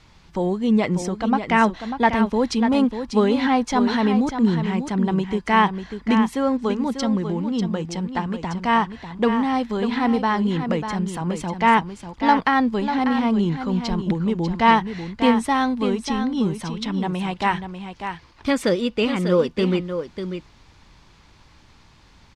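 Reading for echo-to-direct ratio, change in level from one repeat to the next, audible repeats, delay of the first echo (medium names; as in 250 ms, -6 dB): -8.5 dB, no regular repeats, 1, 594 ms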